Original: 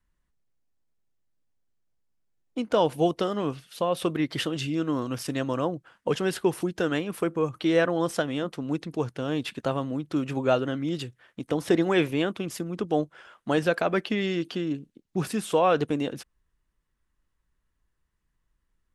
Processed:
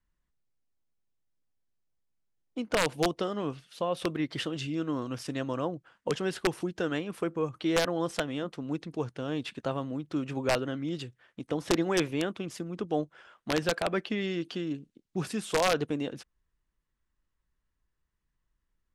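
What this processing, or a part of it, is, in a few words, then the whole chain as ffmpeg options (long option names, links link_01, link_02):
overflowing digital effects unit: -filter_complex "[0:a]asettb=1/sr,asplit=3[link_01][link_02][link_03];[link_01]atrim=end=14.494[link_04];[link_02]atrim=start=14.49:end=15.66,asetpts=PTS-STARTPTS,afade=type=in:duration=0.004:curve=qsin,afade=type=out:start_time=1.166:duration=0.004:curve=qsin,highshelf=frequency=3400:gain=3.5[link_05];[link_03]atrim=start=15.656[link_06];[link_04][link_05]acrossfade=duration=0.004:curve1=hsin:curve2=qsin[link_07];[link_07][link_06]acrossfade=duration=0.004:curve1=qsin:curve2=hsin,aeval=exprs='(mod(4.22*val(0)+1,2)-1)/4.22':channel_layout=same,lowpass=8700,volume=-4.5dB"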